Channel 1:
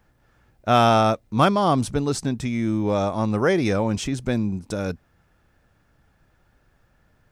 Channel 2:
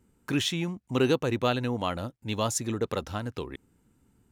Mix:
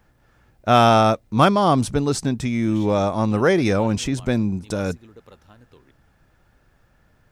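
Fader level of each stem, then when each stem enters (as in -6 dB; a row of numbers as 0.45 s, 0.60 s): +2.5 dB, -17.0 dB; 0.00 s, 2.35 s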